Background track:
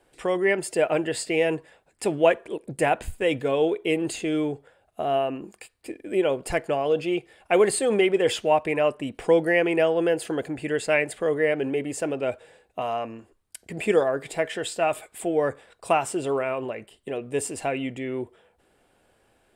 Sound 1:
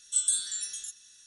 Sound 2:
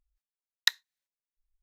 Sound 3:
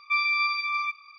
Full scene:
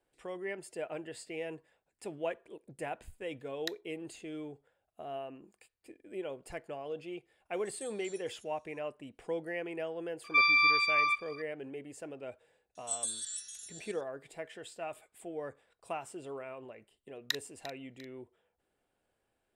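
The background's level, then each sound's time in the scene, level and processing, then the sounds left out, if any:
background track -17 dB
3 add 2 -15 dB
7.53 add 1 -17 dB + noise-modulated level
10.24 add 3
12.75 add 1 -9.5 dB + reverse delay 0.389 s, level -7 dB
16.63 add 2 -9.5 dB + regenerating reverse delay 0.174 s, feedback 61%, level -11 dB

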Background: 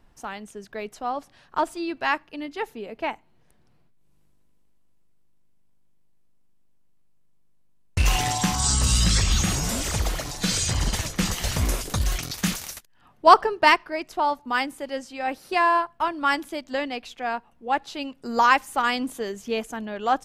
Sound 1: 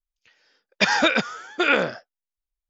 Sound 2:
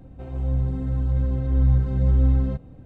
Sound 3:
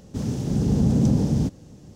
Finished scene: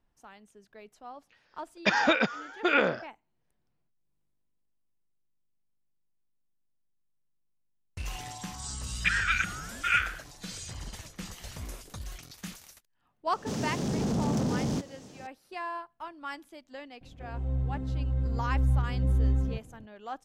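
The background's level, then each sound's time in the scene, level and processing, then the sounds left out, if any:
background -16.5 dB
1.05 add 1 -3.5 dB + high shelf 4100 Hz -10.5 dB
8.24 add 1 -4 dB + elliptic band-pass 1300–3100 Hz
13.32 add 3 -11 dB + overdrive pedal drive 23 dB, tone 6500 Hz, clips at -9.5 dBFS
17.01 add 2 -7 dB

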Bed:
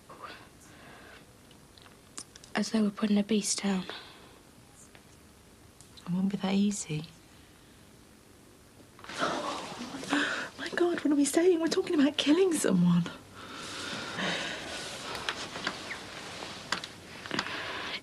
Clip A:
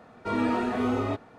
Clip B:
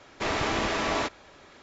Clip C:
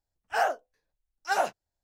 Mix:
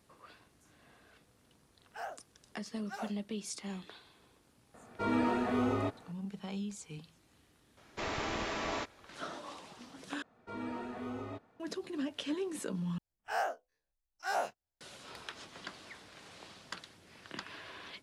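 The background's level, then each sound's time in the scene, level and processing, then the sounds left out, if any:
bed -12 dB
1.62 add C -17 dB
4.74 add A -4.5 dB
7.77 add B -9 dB
10.22 replace with A -14.5 dB
12.98 replace with C -12 dB + spectral dilation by 60 ms

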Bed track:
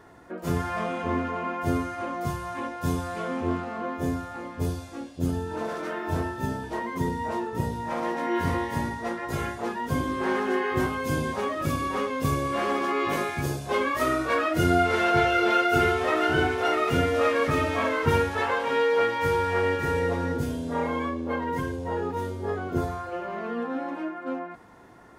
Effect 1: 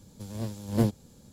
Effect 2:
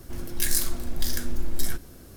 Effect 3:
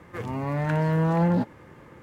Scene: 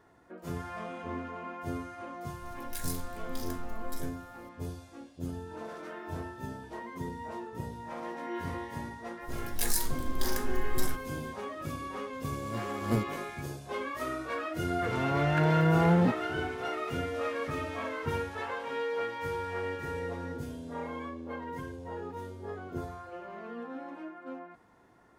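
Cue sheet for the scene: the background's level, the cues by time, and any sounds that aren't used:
bed track -10.5 dB
2.33 add 2 -14 dB
9.19 add 2 -5.5 dB, fades 0.10 s
12.13 add 1 -5 dB
14.68 add 3 -2 dB

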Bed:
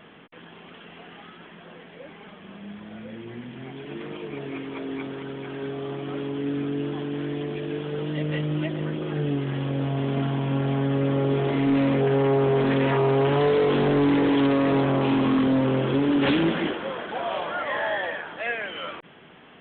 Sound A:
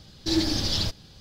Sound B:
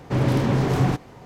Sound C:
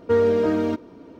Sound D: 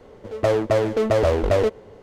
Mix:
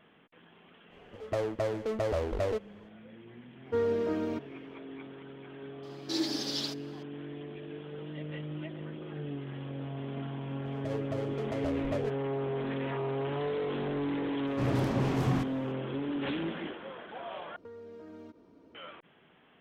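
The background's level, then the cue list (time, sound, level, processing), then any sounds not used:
bed -12.5 dB
0.89 add D -12 dB, fades 0.05 s
3.63 add C -10.5 dB, fades 0.10 s
5.83 add A -6.5 dB + elliptic high-pass 230 Hz
10.41 add D -15.5 dB + rotary speaker horn 7 Hz
14.47 add B -9.5 dB
17.56 replace with C -14 dB + compressor 16:1, threshold -30 dBFS

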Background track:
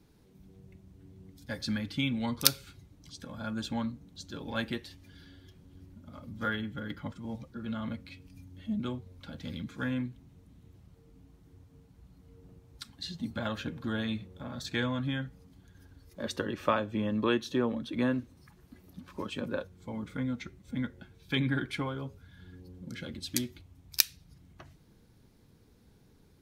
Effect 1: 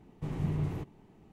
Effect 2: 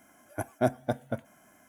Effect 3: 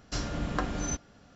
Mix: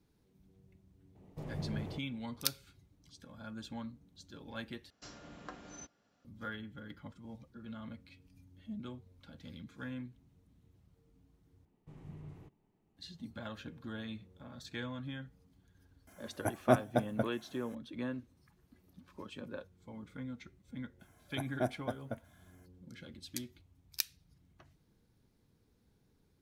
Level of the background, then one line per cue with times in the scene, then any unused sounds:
background track -10 dB
1.15 add 1 -8.5 dB + bell 580 Hz +10 dB
4.9 replace with 3 -15.5 dB + HPF 230 Hz 6 dB/oct
11.65 replace with 1 -17.5 dB
16.07 add 2 -1 dB
20.99 add 2 -8.5 dB, fades 0.02 s

